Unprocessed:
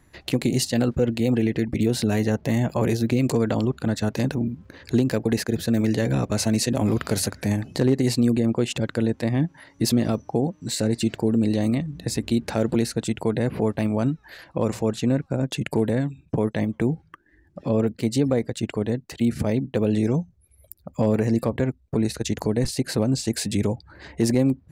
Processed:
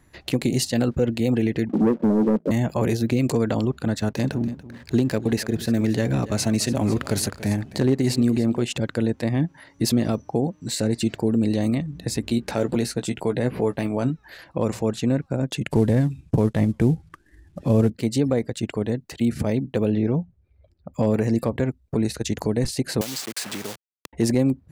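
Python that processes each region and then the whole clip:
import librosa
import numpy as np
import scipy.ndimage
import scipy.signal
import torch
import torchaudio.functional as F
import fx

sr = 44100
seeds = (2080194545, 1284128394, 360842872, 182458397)

y = fx.chain(x, sr, fx.cheby1_bandpass(low_hz=170.0, high_hz=600.0, order=5),
    fx.leveller(passes=2), at=(1.69, 2.51))
y = fx.chain(y, sr, fx.notch(hz=490.0, q=15.0),
    fx.backlash(play_db=-46.0),
    fx.echo_single(ms=286, db=-16.5), at=(3.99, 8.62))
y = fx.chain(y, sr, fx.peak_eq(hz=86.0, db=-5.5, octaves=0.97),
    fx.doubler(ms=16.0, db=-9.0), at=(12.28, 14.1))
y = fx.chain(y, sr, fx.cvsd(bps=64000),
    fx.low_shelf(hz=140.0, db=12.0), at=(15.7, 17.9))
y = fx.chain(y, sr, fx.lowpass(hz=4500.0, slope=24),
    fx.high_shelf(hz=3500.0, db=-11.0), at=(19.9, 20.94))
y = fx.chain(y, sr, fx.delta_hold(step_db=-28.5),
    fx.highpass(hz=1000.0, slope=6),
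    fx.band_squash(depth_pct=100), at=(23.01, 24.13))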